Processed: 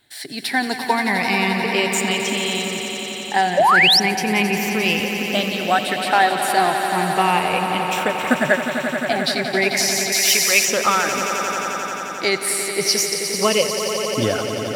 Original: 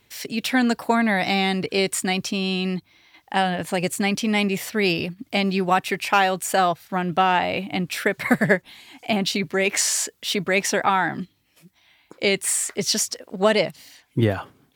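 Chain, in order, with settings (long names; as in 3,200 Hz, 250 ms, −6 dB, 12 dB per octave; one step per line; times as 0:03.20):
rippled gain that drifts along the octave scale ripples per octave 0.81, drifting +0.34 Hz, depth 11 dB
low-shelf EQ 230 Hz −7 dB
on a send: echo that builds up and dies away 88 ms, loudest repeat 5, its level −10.5 dB
0:03.57–0:04.00: on the sum: sound drawn into the spectrogram rise 530–5,900 Hz −13 dBFS
0:10.12–0:10.65: spectral tilt +3 dB per octave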